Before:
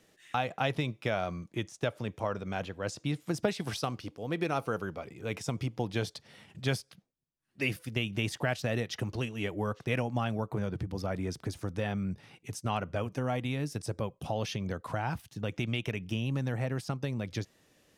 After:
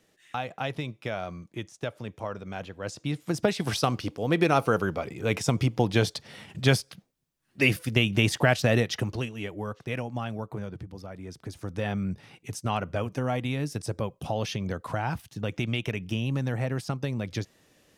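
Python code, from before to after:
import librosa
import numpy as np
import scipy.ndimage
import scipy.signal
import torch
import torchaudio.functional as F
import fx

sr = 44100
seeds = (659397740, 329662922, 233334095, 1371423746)

y = fx.gain(x, sr, db=fx.line((2.65, -1.5), (3.96, 9.0), (8.77, 9.0), (9.48, -1.5), (10.52, -1.5), (11.14, -8.0), (11.88, 3.5)))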